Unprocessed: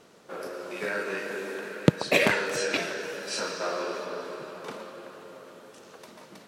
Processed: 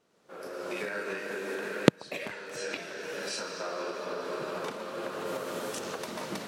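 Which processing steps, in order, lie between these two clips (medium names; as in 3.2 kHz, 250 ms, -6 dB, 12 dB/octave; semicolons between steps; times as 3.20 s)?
recorder AGC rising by 28 dB/s; 5.25–5.78 s: treble shelf 9.2 kHz -> 4.8 kHz +6.5 dB; trim -17 dB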